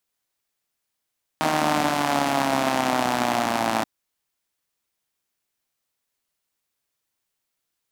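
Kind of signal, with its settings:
pulse-train model of a four-cylinder engine, changing speed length 2.43 s, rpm 4,700, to 3,300, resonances 270/700 Hz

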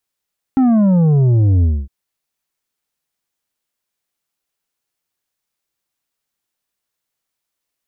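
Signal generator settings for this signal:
bass drop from 270 Hz, over 1.31 s, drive 7 dB, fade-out 0.25 s, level −10 dB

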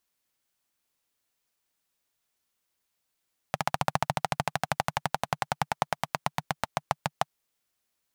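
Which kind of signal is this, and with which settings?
pulse-train model of a single-cylinder engine, changing speed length 3.84 s, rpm 1,800, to 700, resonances 150/780 Hz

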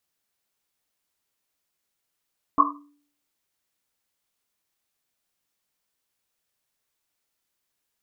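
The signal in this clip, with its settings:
drum after Risset, pitch 290 Hz, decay 0.58 s, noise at 1,100 Hz, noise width 210 Hz, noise 70%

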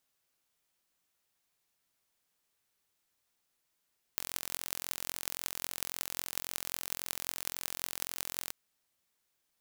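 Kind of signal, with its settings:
impulse train 43.7 per second, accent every 8, −5 dBFS 4.33 s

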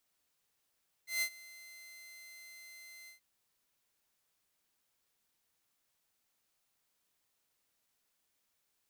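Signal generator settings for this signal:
note with an ADSR envelope saw 2,070 Hz, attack 147 ms, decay 74 ms, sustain −21.5 dB, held 2.01 s, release 118 ms −27 dBFS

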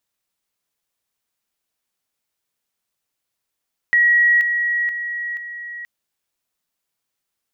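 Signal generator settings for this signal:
level staircase 1,910 Hz −11 dBFS, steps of −6 dB, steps 4, 0.48 s 0.00 s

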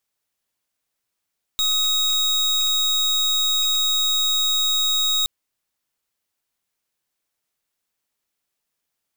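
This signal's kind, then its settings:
pulse wave 3,780 Hz, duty 35% −20 dBFS 3.67 s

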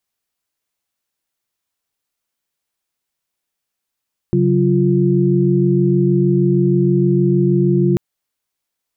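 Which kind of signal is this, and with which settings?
held notes C#3/F#3/F4 sine, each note −15.5 dBFS 3.64 s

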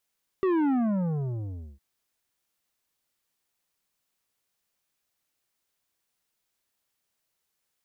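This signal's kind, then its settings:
bass drop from 390 Hz, over 1.36 s, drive 10 dB, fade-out 1.11 s, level −22.5 dB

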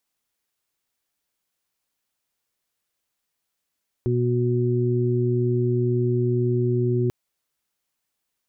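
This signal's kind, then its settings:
steady harmonic partials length 3.04 s, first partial 122 Hz, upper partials −7/−2 dB, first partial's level −21 dB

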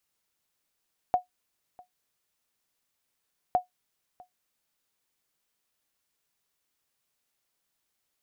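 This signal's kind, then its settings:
ping with an echo 727 Hz, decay 0.13 s, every 2.41 s, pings 2, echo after 0.65 s, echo −25.5 dB −14.5 dBFS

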